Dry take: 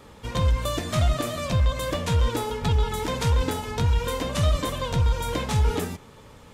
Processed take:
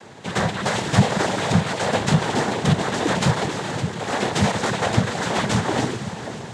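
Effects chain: 3.45–4.12 hard clip -30.5 dBFS, distortion -13 dB; diffused feedback echo 0.494 s, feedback 53%, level -11 dB; noise vocoder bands 6; gain +6.5 dB

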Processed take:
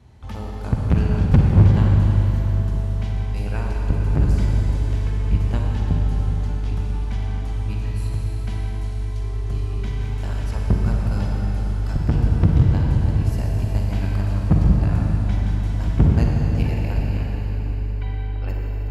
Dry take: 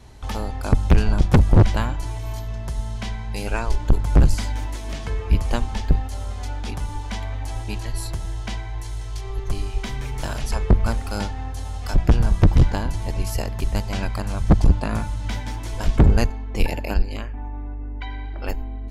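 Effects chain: HPF 73 Hz 12 dB/oct; tone controls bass +9 dB, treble -6 dB; reverb RT60 4.6 s, pre-delay 40 ms, DRR -1.5 dB; gain -8 dB

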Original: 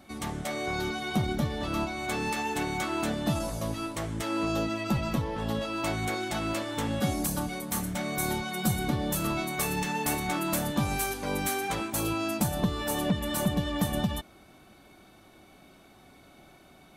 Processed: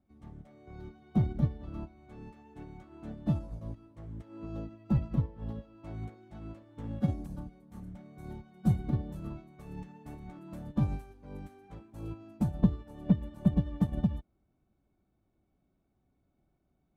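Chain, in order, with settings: HPF 41 Hz 6 dB/oct; tilt -4.5 dB/oct; upward expander 2.5:1, over -26 dBFS; gain -6 dB

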